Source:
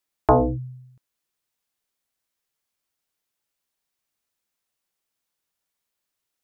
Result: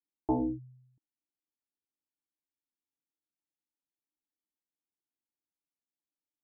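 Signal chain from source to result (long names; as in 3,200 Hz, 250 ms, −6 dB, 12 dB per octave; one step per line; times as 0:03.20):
formant resonators in series u
level −2.5 dB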